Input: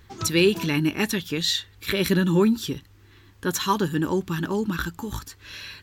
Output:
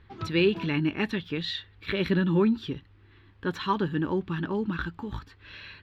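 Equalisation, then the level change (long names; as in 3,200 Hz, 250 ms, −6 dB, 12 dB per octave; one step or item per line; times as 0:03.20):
high-frequency loss of the air 450 metres
parametric band 4,500 Hz +7 dB 2.3 octaves
−3.0 dB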